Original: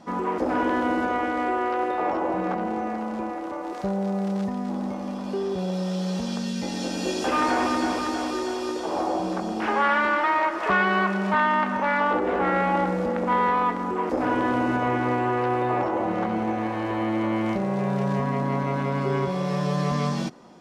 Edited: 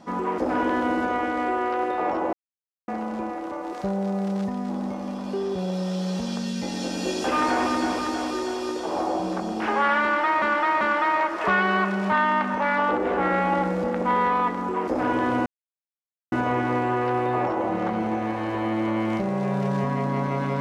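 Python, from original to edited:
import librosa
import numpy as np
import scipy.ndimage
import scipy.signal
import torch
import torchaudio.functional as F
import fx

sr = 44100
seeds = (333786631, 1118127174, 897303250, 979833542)

y = fx.edit(x, sr, fx.silence(start_s=2.33, length_s=0.55),
    fx.repeat(start_s=10.03, length_s=0.39, count=3),
    fx.insert_silence(at_s=14.68, length_s=0.86), tone=tone)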